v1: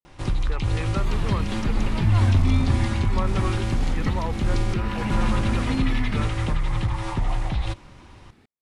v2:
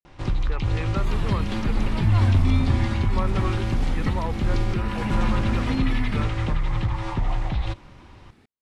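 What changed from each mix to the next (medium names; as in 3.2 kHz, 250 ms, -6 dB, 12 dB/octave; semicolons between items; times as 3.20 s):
first sound: add distance through air 77 m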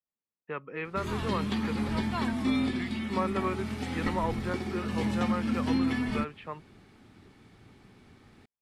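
first sound: muted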